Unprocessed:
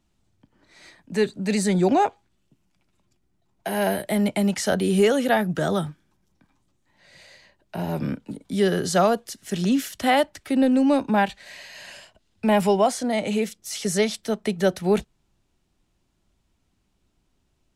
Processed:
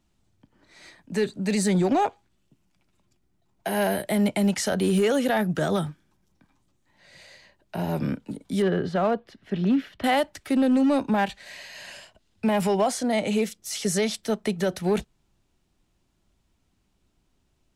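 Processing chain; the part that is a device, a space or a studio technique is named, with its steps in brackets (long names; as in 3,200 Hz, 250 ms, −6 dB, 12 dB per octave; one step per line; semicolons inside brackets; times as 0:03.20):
0:08.62–0:10.04: high-frequency loss of the air 380 metres
limiter into clipper (brickwall limiter −14 dBFS, peak gain reduction 6 dB; hard clipping −16 dBFS, distortion −25 dB)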